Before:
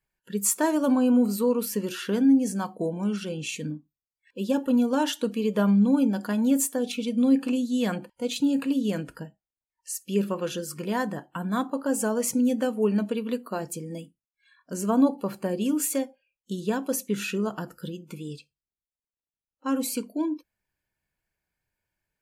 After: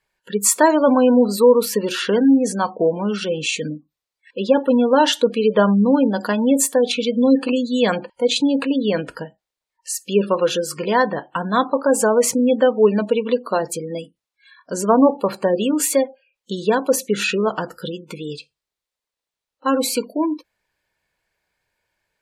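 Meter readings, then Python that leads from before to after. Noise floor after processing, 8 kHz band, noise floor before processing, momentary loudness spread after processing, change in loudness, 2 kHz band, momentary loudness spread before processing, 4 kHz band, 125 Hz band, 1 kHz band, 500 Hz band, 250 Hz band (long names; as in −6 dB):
below −85 dBFS, +8.0 dB, below −85 dBFS, 15 LU, +8.0 dB, +11.0 dB, 15 LU, +11.5 dB, +3.5 dB, +12.0 dB, +12.0 dB, +5.0 dB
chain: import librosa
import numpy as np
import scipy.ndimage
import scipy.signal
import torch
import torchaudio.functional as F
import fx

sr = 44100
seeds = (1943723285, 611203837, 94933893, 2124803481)

y = fx.graphic_eq(x, sr, hz=(500, 1000, 2000, 4000, 8000), db=(9, 7, 6, 9, 4))
y = fx.spec_gate(y, sr, threshold_db=-30, keep='strong')
y = y * 10.0 ** (2.5 / 20.0)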